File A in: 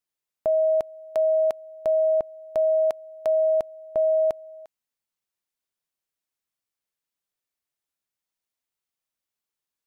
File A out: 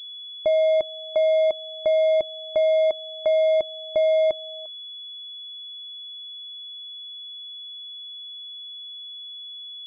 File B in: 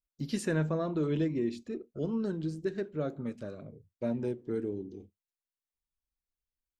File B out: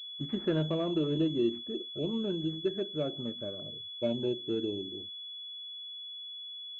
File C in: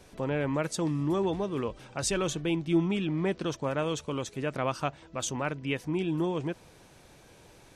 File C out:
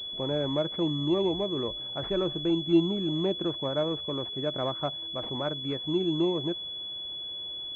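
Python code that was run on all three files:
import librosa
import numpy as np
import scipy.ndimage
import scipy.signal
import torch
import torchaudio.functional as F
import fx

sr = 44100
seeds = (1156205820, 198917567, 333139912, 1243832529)

y = fx.env_lowpass_down(x, sr, base_hz=1100.0, full_db=-22.5)
y = fx.small_body(y, sr, hz=(350.0, 600.0), ring_ms=45, db=7)
y = fx.pwm(y, sr, carrier_hz=3400.0)
y = y * 10.0 ** (-2.0 / 20.0)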